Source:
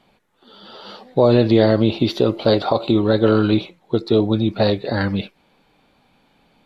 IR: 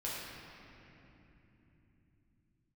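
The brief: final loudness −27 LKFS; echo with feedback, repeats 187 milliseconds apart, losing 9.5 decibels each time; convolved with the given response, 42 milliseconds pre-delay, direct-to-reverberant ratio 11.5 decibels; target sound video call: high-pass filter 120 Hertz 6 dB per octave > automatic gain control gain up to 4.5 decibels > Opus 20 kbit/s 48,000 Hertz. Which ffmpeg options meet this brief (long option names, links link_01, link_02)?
-filter_complex "[0:a]aecho=1:1:187|374|561|748:0.335|0.111|0.0365|0.012,asplit=2[link_01][link_02];[1:a]atrim=start_sample=2205,adelay=42[link_03];[link_02][link_03]afir=irnorm=-1:irlink=0,volume=-14.5dB[link_04];[link_01][link_04]amix=inputs=2:normalize=0,highpass=frequency=120:poles=1,dynaudnorm=maxgain=4.5dB,volume=-8.5dB" -ar 48000 -c:a libopus -b:a 20k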